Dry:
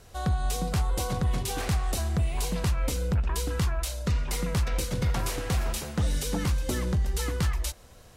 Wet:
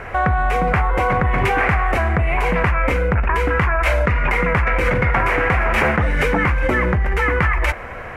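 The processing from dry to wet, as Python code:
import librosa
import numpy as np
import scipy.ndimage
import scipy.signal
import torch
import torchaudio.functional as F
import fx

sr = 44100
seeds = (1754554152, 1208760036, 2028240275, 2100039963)

p1 = fx.curve_eq(x, sr, hz=(180.0, 2200.0, 3800.0, 7800.0), db=(0, 15, -15, -19))
p2 = fx.over_compress(p1, sr, threshold_db=-31.0, ratio=-0.5)
p3 = p1 + (p2 * 10.0 ** (0.0 / 20.0))
y = p3 * 10.0 ** (5.5 / 20.0)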